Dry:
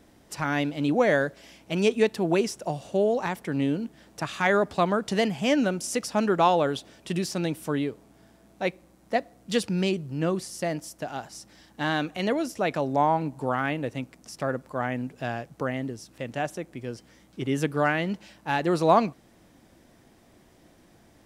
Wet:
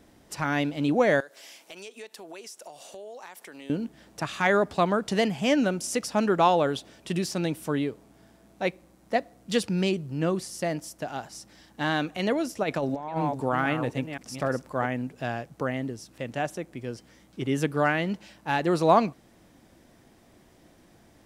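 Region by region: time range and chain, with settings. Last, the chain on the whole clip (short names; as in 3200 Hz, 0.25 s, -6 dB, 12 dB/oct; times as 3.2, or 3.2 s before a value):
1.2–3.7 HPF 490 Hz + high shelf 4300 Hz +9.5 dB + compressor 4:1, threshold -42 dBFS
12.63–14.86 reverse delay 0.258 s, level -9 dB + negative-ratio compressor -26 dBFS, ratio -0.5
whole clip: dry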